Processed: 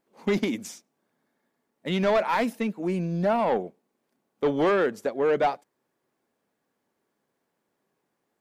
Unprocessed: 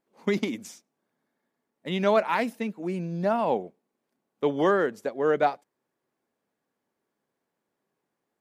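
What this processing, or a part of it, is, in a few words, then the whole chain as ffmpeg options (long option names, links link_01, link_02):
saturation between pre-emphasis and de-emphasis: -af "highshelf=frequency=5100:gain=9.5,asoftclip=type=tanh:threshold=-20.5dB,highshelf=frequency=5100:gain=-9.5,volume=4dB"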